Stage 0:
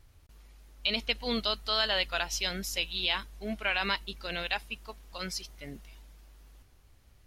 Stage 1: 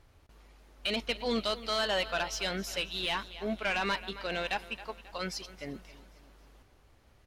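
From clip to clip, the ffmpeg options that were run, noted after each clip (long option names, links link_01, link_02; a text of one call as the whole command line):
ffmpeg -i in.wav -filter_complex "[0:a]tiltshelf=frequency=970:gain=6,aecho=1:1:269|538|807|1076:0.112|0.0539|0.0259|0.0124,asplit=2[link_01][link_02];[link_02]highpass=frequency=720:poles=1,volume=16dB,asoftclip=type=tanh:threshold=-16dB[link_03];[link_01][link_03]amix=inputs=2:normalize=0,lowpass=frequency=4900:poles=1,volume=-6dB,volume=-4.5dB" out.wav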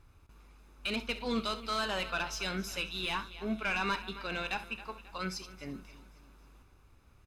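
ffmpeg -i in.wav -af "equalizer=frequency=4100:width=1.5:gain=-3,aecho=1:1:0.8:0.47,aecho=1:1:32|65:0.158|0.2,volume=-2dB" out.wav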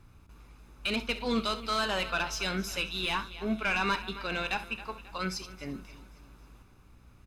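ffmpeg -i in.wav -af "aeval=exprs='val(0)+0.000794*(sin(2*PI*60*n/s)+sin(2*PI*2*60*n/s)/2+sin(2*PI*3*60*n/s)/3+sin(2*PI*4*60*n/s)/4+sin(2*PI*5*60*n/s)/5)':channel_layout=same,volume=3.5dB" out.wav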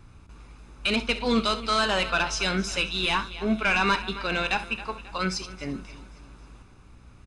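ffmpeg -i in.wav -af "aresample=22050,aresample=44100,volume=6dB" out.wav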